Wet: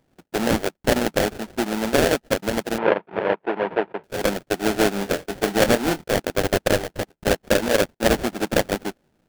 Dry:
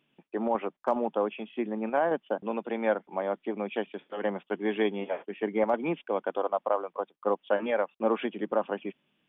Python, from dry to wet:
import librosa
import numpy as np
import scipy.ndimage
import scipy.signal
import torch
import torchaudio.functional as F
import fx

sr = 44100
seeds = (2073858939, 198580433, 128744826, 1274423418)

y = fx.sample_hold(x, sr, seeds[0], rate_hz=1100.0, jitter_pct=20)
y = fx.cabinet(y, sr, low_hz=180.0, low_slope=12, high_hz=2600.0, hz=(250.0, 430.0, 950.0), db=(-9, 4, 10), at=(2.78, 4.04))
y = fx.doubler(y, sr, ms=25.0, db=-10.5, at=(4.94, 6.2))
y = F.gain(torch.from_numpy(y), 7.5).numpy()